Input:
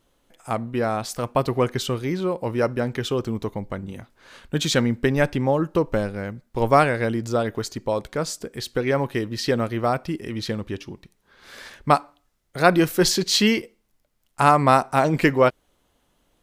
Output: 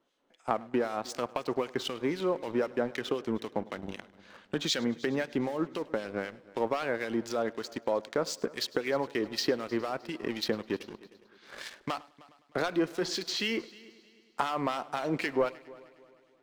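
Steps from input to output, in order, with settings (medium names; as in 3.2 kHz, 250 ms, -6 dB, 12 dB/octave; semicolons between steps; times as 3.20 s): three-band isolator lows -24 dB, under 200 Hz, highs -22 dB, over 6.9 kHz; waveshaping leveller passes 2; compression 4:1, threshold -26 dBFS, peak gain reduction 16.5 dB; harmonic tremolo 3.9 Hz, depth 70%, crossover 1.8 kHz; multi-head delay 103 ms, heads first and third, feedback 52%, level -22.5 dB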